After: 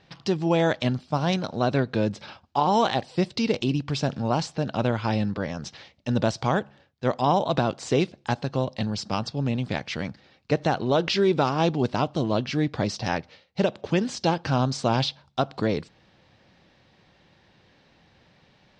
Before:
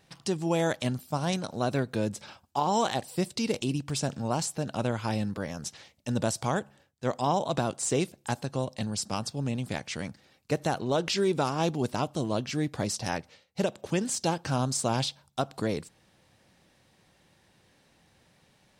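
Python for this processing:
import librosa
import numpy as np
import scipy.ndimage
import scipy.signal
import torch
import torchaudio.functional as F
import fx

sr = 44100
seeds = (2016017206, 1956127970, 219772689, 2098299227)

y = scipy.signal.sosfilt(scipy.signal.butter(4, 5000.0, 'lowpass', fs=sr, output='sos'), x)
y = y * librosa.db_to_amplitude(5.0)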